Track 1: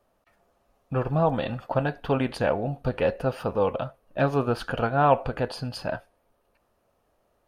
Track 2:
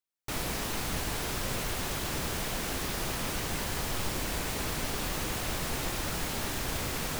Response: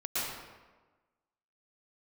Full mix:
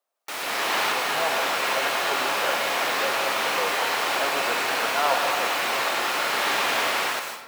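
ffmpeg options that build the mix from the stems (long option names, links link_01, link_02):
-filter_complex "[0:a]volume=-14.5dB,asplit=3[link_01][link_02][link_03];[link_02]volume=-8dB[link_04];[1:a]volume=1dB,asplit=2[link_05][link_06];[link_06]volume=-4.5dB[link_07];[link_03]apad=whole_len=317241[link_08];[link_05][link_08]sidechaincompress=threshold=-55dB:ratio=8:attack=16:release=504[link_09];[2:a]atrim=start_sample=2205[link_10];[link_04][link_07]amix=inputs=2:normalize=0[link_11];[link_11][link_10]afir=irnorm=-1:irlink=0[link_12];[link_01][link_09][link_12]amix=inputs=3:normalize=0,dynaudnorm=framelen=160:gausssize=7:maxgain=10.5dB,highpass=650,acrossover=split=4100[link_13][link_14];[link_14]acompressor=threshold=-35dB:ratio=4:attack=1:release=60[link_15];[link_13][link_15]amix=inputs=2:normalize=0"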